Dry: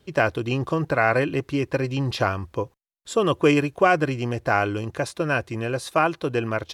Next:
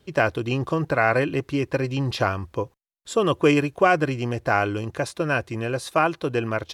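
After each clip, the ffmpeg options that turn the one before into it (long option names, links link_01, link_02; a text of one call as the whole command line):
ffmpeg -i in.wav -af anull out.wav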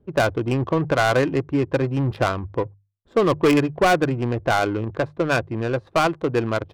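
ffmpeg -i in.wav -af "bandreject=frequency=50:width_type=h:width=6,bandreject=frequency=100:width_type=h:width=6,bandreject=frequency=150:width_type=h:width=6,adynamicsmooth=sensitivity=1.5:basefreq=580,asoftclip=type=hard:threshold=-15.5dB,volume=3.5dB" out.wav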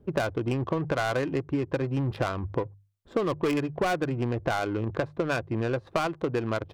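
ffmpeg -i in.wav -af "acompressor=threshold=-28dB:ratio=6,volume=3dB" out.wav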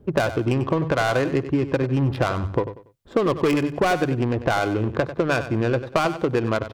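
ffmpeg -i in.wav -af "aecho=1:1:95|190|285:0.251|0.0703|0.0197,volume=6dB" out.wav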